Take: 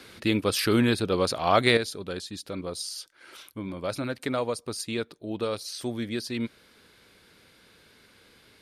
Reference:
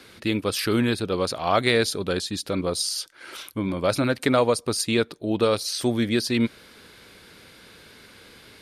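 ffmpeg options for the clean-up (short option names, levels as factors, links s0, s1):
-af "asetnsamples=n=441:p=0,asendcmd='1.77 volume volume 8.5dB',volume=1"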